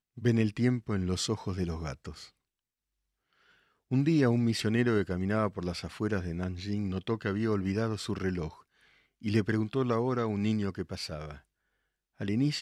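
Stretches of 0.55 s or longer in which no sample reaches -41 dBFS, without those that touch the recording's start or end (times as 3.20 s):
2.25–3.91 s
8.53–9.24 s
11.38–12.21 s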